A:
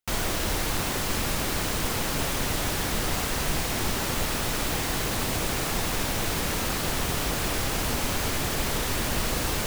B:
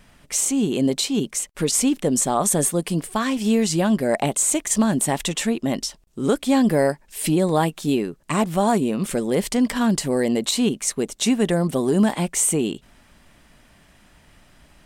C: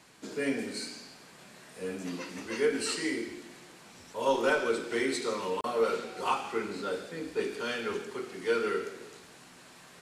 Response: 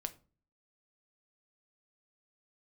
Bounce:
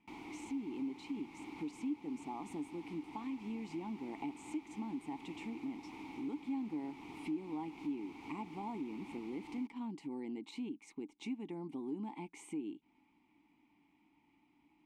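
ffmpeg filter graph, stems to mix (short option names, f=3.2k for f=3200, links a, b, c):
-filter_complex "[0:a]volume=-5.5dB[a];[1:a]volume=-4dB[b];[a][b]amix=inputs=2:normalize=0,asplit=3[c][d][e];[c]bandpass=f=300:t=q:w=8,volume=0dB[f];[d]bandpass=f=870:t=q:w=8,volume=-6dB[g];[e]bandpass=f=2.24k:t=q:w=8,volume=-9dB[h];[f][g][h]amix=inputs=3:normalize=0,acompressor=threshold=-44dB:ratio=2"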